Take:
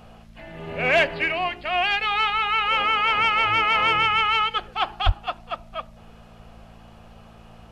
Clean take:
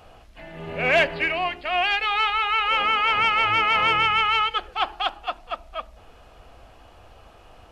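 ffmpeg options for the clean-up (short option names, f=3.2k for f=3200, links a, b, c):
-filter_complex "[0:a]bandreject=f=56.1:t=h:w=4,bandreject=f=112.2:t=h:w=4,bandreject=f=168.3:t=h:w=4,bandreject=f=224.4:t=h:w=4,asplit=3[a][b][c];[a]afade=t=out:st=5.05:d=0.02[d];[b]highpass=f=140:w=0.5412,highpass=f=140:w=1.3066,afade=t=in:st=5.05:d=0.02,afade=t=out:st=5.17:d=0.02[e];[c]afade=t=in:st=5.17:d=0.02[f];[d][e][f]amix=inputs=3:normalize=0"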